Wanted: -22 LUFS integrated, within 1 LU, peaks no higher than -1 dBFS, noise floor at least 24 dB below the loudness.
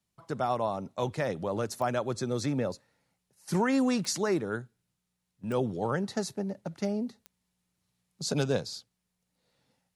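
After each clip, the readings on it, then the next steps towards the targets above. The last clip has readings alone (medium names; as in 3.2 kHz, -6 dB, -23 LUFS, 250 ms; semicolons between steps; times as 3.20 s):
clicks found 4; loudness -31.5 LUFS; peak level -17.0 dBFS; loudness target -22.0 LUFS
-> de-click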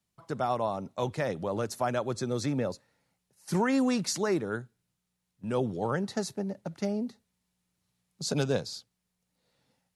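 clicks found 0; loudness -31.5 LUFS; peak level -17.0 dBFS; loudness target -22.0 LUFS
-> trim +9.5 dB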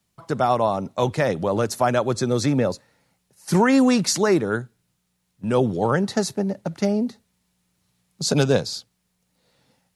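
loudness -22.0 LUFS; peak level -7.5 dBFS; noise floor -72 dBFS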